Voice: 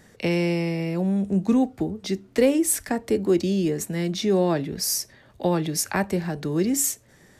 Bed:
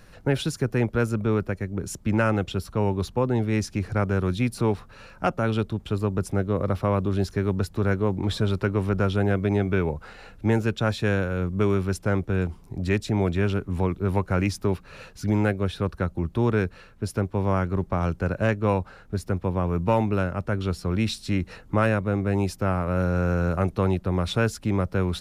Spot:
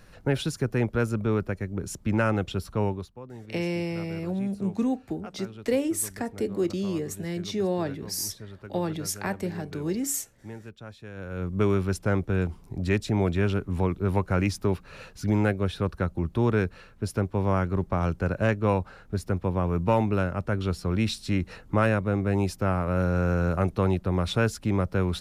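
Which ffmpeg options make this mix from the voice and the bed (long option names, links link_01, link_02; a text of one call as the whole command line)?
ffmpeg -i stem1.wav -i stem2.wav -filter_complex "[0:a]adelay=3300,volume=-6dB[link_01];[1:a]volume=16dB,afade=type=out:start_time=2.84:duration=0.25:silence=0.141254,afade=type=in:start_time=11.14:duration=0.47:silence=0.125893[link_02];[link_01][link_02]amix=inputs=2:normalize=0" out.wav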